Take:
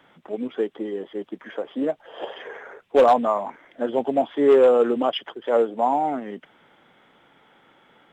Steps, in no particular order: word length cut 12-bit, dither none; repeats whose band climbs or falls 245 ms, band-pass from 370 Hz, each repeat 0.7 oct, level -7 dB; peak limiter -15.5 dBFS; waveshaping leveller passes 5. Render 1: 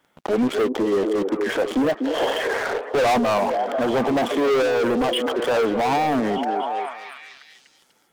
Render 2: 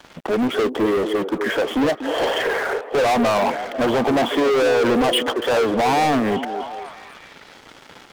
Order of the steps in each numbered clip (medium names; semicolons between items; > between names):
waveshaping leveller > word length cut > repeats whose band climbs or falls > peak limiter; peak limiter > waveshaping leveller > repeats whose band climbs or falls > word length cut